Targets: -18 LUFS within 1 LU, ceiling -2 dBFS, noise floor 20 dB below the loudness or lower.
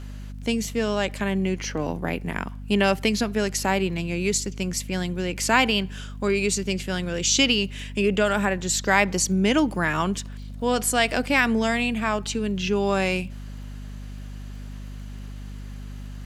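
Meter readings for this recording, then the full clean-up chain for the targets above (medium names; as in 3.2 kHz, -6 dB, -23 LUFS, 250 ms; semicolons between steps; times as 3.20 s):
tick rate 22 per s; hum 50 Hz; highest harmonic 250 Hz; hum level -34 dBFS; loudness -23.5 LUFS; peak level -3.5 dBFS; loudness target -18.0 LUFS
-> de-click; de-hum 50 Hz, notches 5; trim +5.5 dB; peak limiter -2 dBFS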